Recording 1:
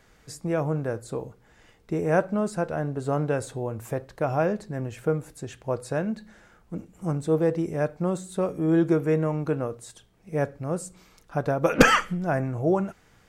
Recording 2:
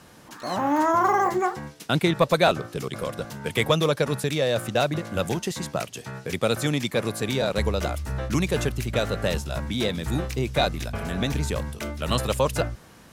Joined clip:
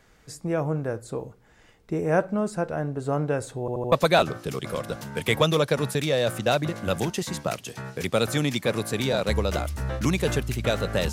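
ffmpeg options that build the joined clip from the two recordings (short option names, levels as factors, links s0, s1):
-filter_complex "[0:a]apad=whole_dur=11.12,atrim=end=11.12,asplit=4[s0][s1][s2][s3];[s0]atrim=end=3.682[s4];[s1]atrim=start=3.598:end=3.682[s5];[s2]atrim=start=3.598:end=3.682[s6];[s3]atrim=start=3.598:end=3.682[s7];[1:a]atrim=start=2.208:end=9.41[s8];[s4][s5]acrossfade=d=0.004:c1=hsin:c2=hsin[s9];[s9][s6]acrossfade=d=0.004:c1=hsin:c2=hsin[s10];[s10][s7]acrossfade=d=0.004:c1=hsin:c2=hsin[s11];[s11][s8]acrossfade=d=0.004:c1=hsin:c2=hsin"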